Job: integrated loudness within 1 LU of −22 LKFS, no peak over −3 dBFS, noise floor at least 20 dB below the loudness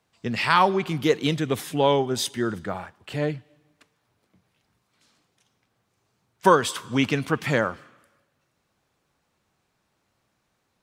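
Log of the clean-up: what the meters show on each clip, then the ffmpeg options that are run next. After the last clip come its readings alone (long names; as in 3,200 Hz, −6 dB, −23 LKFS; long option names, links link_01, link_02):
integrated loudness −23.5 LKFS; sample peak −3.0 dBFS; target loudness −22.0 LKFS
→ -af "volume=1.5dB,alimiter=limit=-3dB:level=0:latency=1"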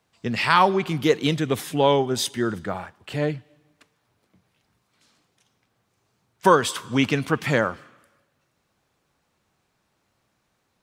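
integrated loudness −22.5 LKFS; sample peak −3.0 dBFS; background noise floor −72 dBFS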